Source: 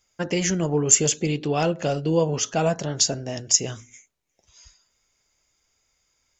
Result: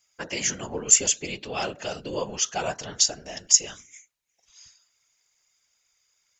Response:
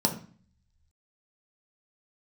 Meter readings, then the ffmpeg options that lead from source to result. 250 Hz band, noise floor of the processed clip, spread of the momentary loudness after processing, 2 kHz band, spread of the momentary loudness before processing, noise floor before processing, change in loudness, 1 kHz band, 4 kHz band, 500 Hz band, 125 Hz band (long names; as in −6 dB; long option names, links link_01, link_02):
−12.5 dB, −73 dBFS, 15 LU, −1.0 dB, 9 LU, −72 dBFS, −1.5 dB, −4.5 dB, +0.5 dB, −9.0 dB, −16.0 dB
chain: -af "afftfilt=real='hypot(re,im)*cos(2*PI*random(0))':imag='hypot(re,im)*sin(2*PI*random(1))':win_size=512:overlap=0.75,tiltshelf=frequency=690:gain=-8,volume=-1dB"